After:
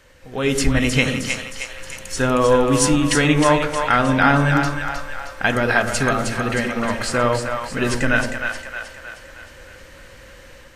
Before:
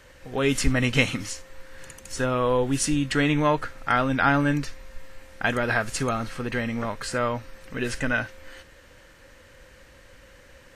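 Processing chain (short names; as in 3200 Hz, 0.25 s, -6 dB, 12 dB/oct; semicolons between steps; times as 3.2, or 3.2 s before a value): de-hum 57.2 Hz, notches 36; AGC gain up to 7 dB; split-band echo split 600 Hz, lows 98 ms, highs 0.312 s, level -5.5 dB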